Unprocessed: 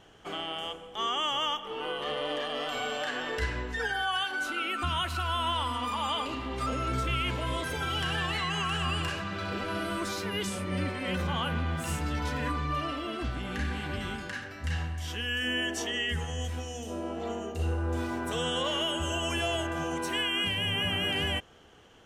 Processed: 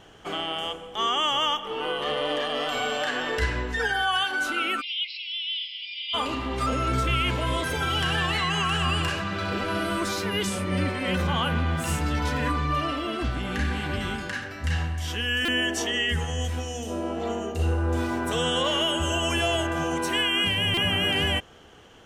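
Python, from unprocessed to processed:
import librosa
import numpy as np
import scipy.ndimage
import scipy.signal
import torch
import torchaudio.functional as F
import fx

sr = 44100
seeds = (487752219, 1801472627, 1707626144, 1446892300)

y = fx.brickwall_bandpass(x, sr, low_hz=2000.0, high_hz=5500.0, at=(4.8, 6.13), fade=0.02)
y = fx.buffer_glitch(y, sr, at_s=(15.45, 20.74), block=128, repeats=10)
y = F.gain(torch.from_numpy(y), 5.5).numpy()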